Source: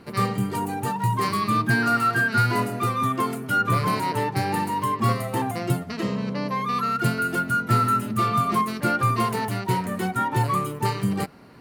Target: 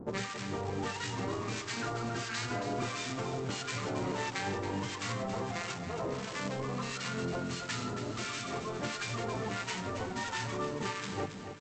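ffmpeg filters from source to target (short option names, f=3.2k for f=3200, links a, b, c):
-filter_complex "[0:a]adynamicsmooth=sensitivity=6.5:basefreq=570,lowpass=4k,bandreject=f=51.47:t=h:w=4,bandreject=f=102.94:t=h:w=4,bandreject=f=154.41:t=h:w=4,acompressor=threshold=-29dB:ratio=3,aresample=16000,acrusher=bits=3:mode=log:mix=0:aa=0.000001,aresample=44100,acrossover=split=1100[a][b];[a]aeval=exprs='val(0)*(1-1/2+1/2*cos(2*PI*1.5*n/s))':c=same[c];[b]aeval=exprs='val(0)*(1-1/2-1/2*cos(2*PI*1.5*n/s))':c=same[d];[c][d]amix=inputs=2:normalize=0,afftfilt=real='re*lt(hypot(re,im),0.1)':imag='im*lt(hypot(re,im),0.1)':win_size=1024:overlap=0.75,asplit=2[e][f];[f]aecho=0:1:275|550|825|1100|1375|1650:0.335|0.174|0.0906|0.0471|0.0245|0.0127[g];[e][g]amix=inputs=2:normalize=0,volume=4.5dB"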